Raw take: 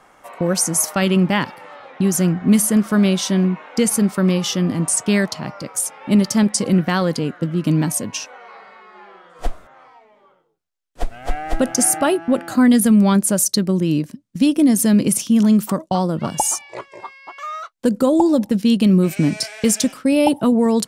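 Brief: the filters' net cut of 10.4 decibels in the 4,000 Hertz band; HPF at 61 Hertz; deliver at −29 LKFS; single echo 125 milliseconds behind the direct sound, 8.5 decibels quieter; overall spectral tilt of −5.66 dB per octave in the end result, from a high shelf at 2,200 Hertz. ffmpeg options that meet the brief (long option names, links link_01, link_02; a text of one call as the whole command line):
ffmpeg -i in.wav -af "highpass=61,highshelf=frequency=2200:gain=-6,equalizer=frequency=4000:width_type=o:gain=-8.5,aecho=1:1:125:0.376,volume=-11dB" out.wav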